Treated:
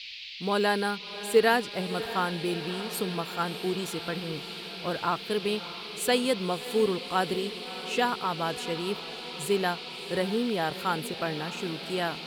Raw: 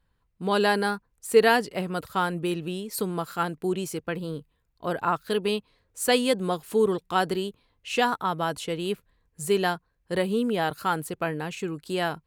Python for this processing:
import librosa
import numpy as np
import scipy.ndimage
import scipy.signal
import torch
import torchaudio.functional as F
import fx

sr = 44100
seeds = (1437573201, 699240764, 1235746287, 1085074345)

y = fx.dmg_noise_band(x, sr, seeds[0], low_hz=2200.0, high_hz=4600.0, level_db=-39.0)
y = fx.quant_companded(y, sr, bits=8)
y = fx.echo_diffused(y, sr, ms=634, feedback_pct=70, wet_db=-14)
y = F.gain(torch.from_numpy(y), -3.0).numpy()